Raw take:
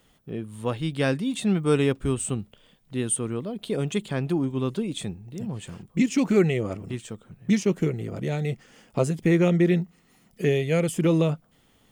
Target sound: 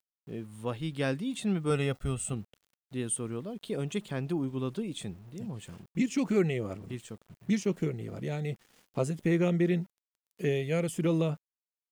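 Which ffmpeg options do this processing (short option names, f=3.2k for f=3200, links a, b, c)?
-filter_complex "[0:a]aeval=exprs='val(0)*gte(abs(val(0)),0.00355)':c=same,asettb=1/sr,asplit=3[a][b][c];[a]atrim=end=1.704[d];[b]atrim=start=1.7:end=2.33,asetpts=PTS-STARTPTS,afade=t=in:d=0.004:c=qsin,afade=t=out:st=0.626:d=0.004:c=qsin,aecho=1:1:1.5:0.59,atrim=end_sample=27783[e];[c]atrim=start=2.326[f];[d][e]acrossfade=d=0.004:c1=hsin:c2=qsin[g];[g][f]acrossfade=d=0.004:c1=qsin:c2=hsin,volume=-6.5dB"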